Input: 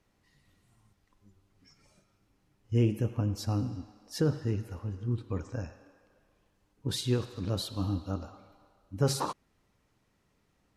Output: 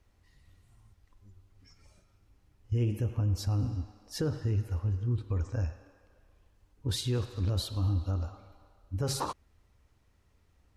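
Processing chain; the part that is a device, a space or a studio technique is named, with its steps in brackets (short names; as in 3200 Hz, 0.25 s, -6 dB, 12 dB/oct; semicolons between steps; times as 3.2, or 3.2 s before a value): car stereo with a boomy subwoofer (resonant low shelf 110 Hz +10 dB, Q 1.5; limiter -21.5 dBFS, peak gain reduction 7 dB)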